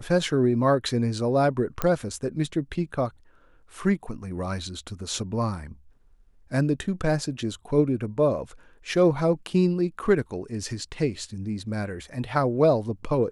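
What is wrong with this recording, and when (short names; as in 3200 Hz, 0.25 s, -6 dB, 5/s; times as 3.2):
1.82 pop -11 dBFS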